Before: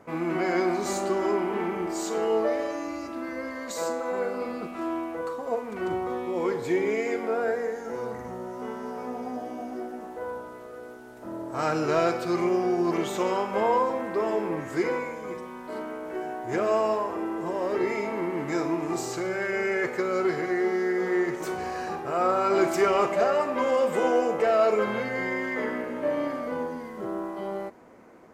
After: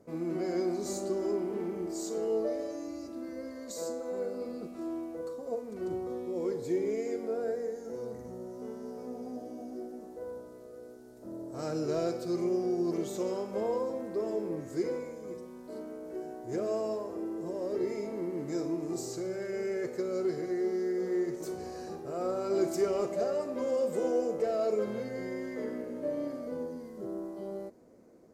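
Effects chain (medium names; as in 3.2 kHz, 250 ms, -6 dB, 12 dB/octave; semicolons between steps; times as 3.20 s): high-order bell 1.6 kHz -12.5 dB 2.4 oct; trim -5 dB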